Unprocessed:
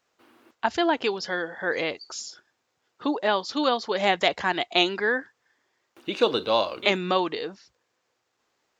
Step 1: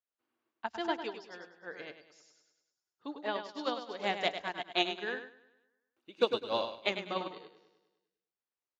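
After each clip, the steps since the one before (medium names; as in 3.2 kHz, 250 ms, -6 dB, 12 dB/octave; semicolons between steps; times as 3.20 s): feedback delay 101 ms, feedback 56%, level -4 dB; upward expansion 2.5:1, over -31 dBFS; trim -5.5 dB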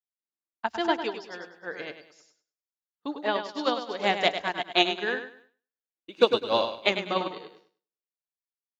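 expander -57 dBFS; trim +8 dB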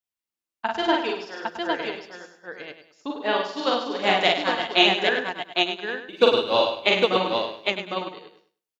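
peaking EQ 2.8 kHz +3.5 dB 0.37 oct; multi-tap echo 42/54/807 ms -3/-6.5/-3 dB; trim +1.5 dB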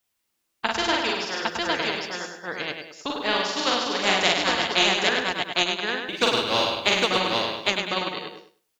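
spectrum-flattening compressor 2:1; trim -3 dB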